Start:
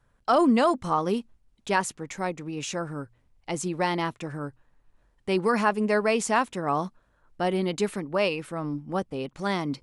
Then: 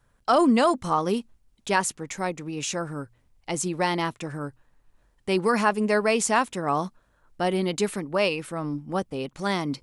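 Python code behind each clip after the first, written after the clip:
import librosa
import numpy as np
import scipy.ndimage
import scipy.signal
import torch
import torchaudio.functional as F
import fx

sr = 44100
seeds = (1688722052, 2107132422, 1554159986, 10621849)

y = fx.high_shelf(x, sr, hz=4800.0, db=6.0)
y = F.gain(torch.from_numpy(y), 1.0).numpy()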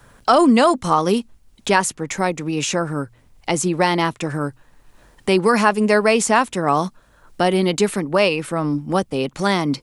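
y = fx.band_squash(x, sr, depth_pct=40)
y = F.gain(torch.from_numpy(y), 7.0).numpy()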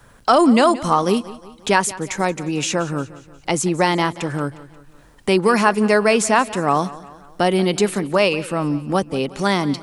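y = fx.echo_feedback(x, sr, ms=178, feedback_pct=49, wet_db=-18)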